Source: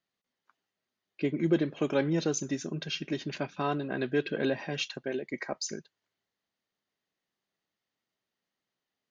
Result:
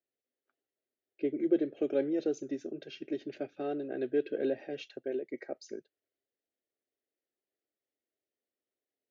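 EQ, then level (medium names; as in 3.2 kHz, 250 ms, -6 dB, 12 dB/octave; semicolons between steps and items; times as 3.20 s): band-pass filter 410 Hz, Q 0.51; static phaser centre 420 Hz, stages 4; 0.0 dB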